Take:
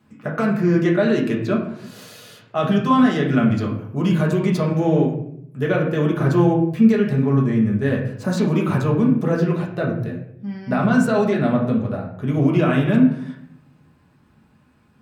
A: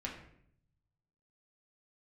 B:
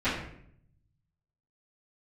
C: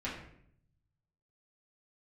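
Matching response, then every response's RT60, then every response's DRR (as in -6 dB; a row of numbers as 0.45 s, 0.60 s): A; 0.65 s, 0.65 s, 0.65 s; -3.0 dB, -18.5 dB, -8.5 dB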